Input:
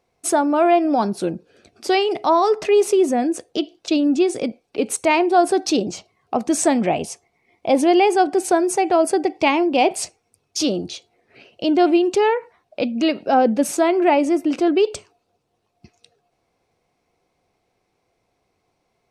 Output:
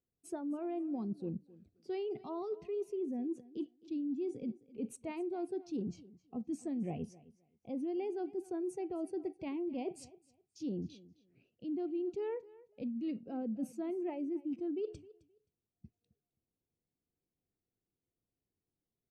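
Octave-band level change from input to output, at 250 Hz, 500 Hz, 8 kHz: −18.0, −21.5, −31.5 decibels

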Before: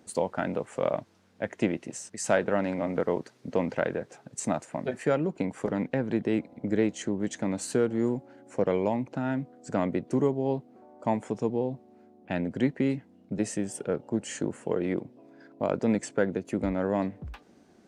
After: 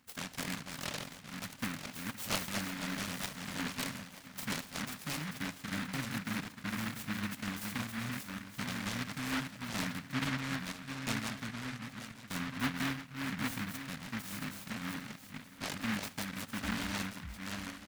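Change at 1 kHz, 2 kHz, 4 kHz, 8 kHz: −7.0, +0.5, +7.0, −2.5 decibels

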